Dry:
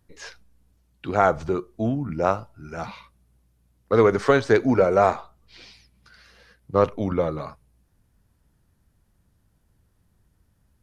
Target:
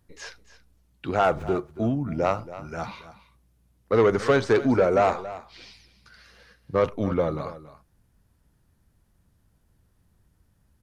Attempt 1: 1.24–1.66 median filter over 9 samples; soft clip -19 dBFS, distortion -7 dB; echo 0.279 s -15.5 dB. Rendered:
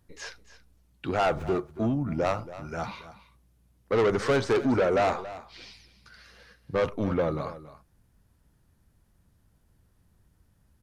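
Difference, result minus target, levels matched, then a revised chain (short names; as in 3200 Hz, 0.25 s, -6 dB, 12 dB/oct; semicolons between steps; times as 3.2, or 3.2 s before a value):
soft clip: distortion +7 dB
1.24–1.66 median filter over 9 samples; soft clip -11.5 dBFS, distortion -14 dB; echo 0.279 s -15.5 dB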